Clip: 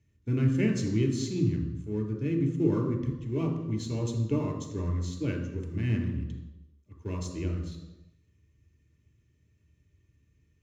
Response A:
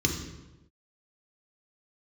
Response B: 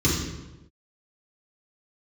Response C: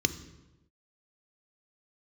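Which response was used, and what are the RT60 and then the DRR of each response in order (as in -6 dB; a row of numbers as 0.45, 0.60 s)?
A; 1.0, 1.0, 1.0 s; 1.5, -8.0, 10.5 dB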